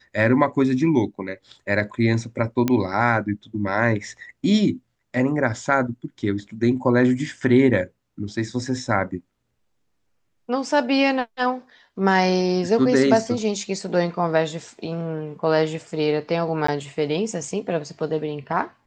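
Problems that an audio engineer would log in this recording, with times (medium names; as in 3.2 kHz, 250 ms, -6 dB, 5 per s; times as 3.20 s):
2.68 s: pop -8 dBFS
16.67–16.68 s: dropout 14 ms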